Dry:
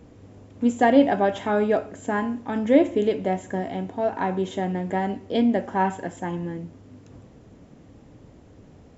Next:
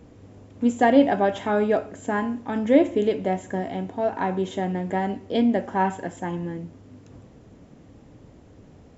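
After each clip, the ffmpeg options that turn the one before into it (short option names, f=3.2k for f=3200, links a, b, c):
-af anull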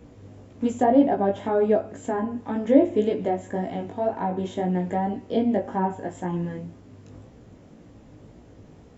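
-filter_complex "[0:a]acrossover=split=990[a][b];[b]acompressor=threshold=-42dB:ratio=12[c];[a][c]amix=inputs=2:normalize=0,flanger=delay=16.5:depth=3.4:speed=1.9,volume=3.5dB"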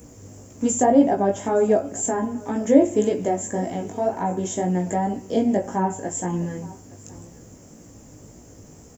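-af "aexciter=amount=12.1:drive=4.5:freq=5.7k,aecho=1:1:867:0.0841,volume=2dB"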